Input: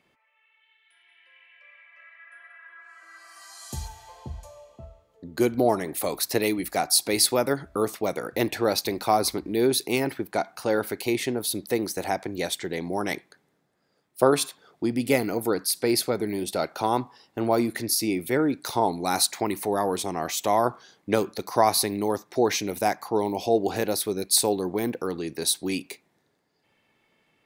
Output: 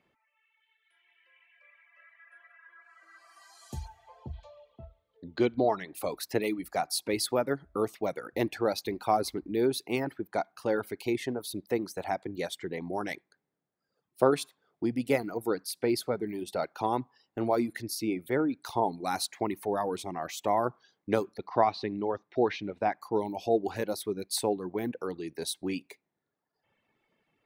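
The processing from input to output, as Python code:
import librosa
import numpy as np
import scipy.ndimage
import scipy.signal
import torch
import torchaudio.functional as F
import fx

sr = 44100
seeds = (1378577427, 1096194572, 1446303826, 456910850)

y = fx.lowpass_res(x, sr, hz=3700.0, q=3.0, at=(4.33, 5.95))
y = fx.lowpass(y, sr, hz=4000.0, slope=24, at=(21.36, 23.0), fade=0.02)
y = fx.dereverb_blind(y, sr, rt60_s=1.1)
y = fx.high_shelf(y, sr, hz=3600.0, db=-10.0)
y = y * librosa.db_to_amplitude(-3.5)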